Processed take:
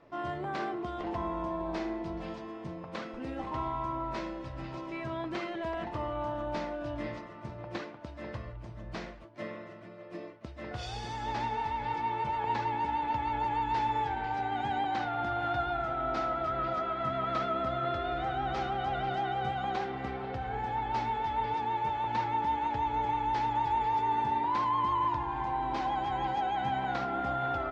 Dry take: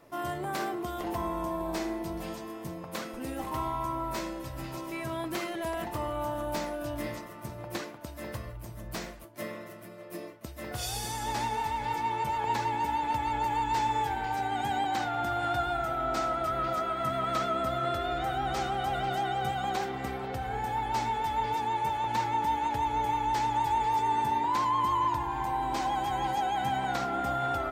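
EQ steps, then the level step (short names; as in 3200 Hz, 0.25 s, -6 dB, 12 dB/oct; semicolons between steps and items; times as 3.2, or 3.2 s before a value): Bessel low-pass 3400 Hz, order 4; -1.5 dB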